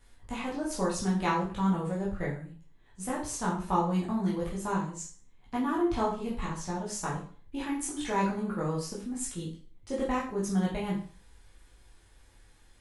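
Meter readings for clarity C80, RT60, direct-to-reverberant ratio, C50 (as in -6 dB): 10.5 dB, 0.45 s, -6.5 dB, 6.0 dB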